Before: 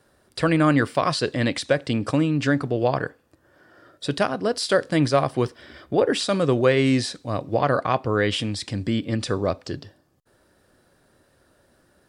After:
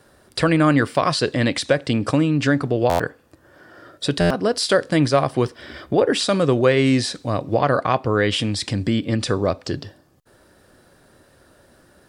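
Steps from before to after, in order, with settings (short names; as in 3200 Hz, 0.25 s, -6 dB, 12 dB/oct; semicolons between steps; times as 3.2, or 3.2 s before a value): in parallel at +2.5 dB: compressor, threshold -29 dBFS, peak gain reduction 15 dB; on the sum: stuck buffer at 2.89/4.2, samples 512, times 8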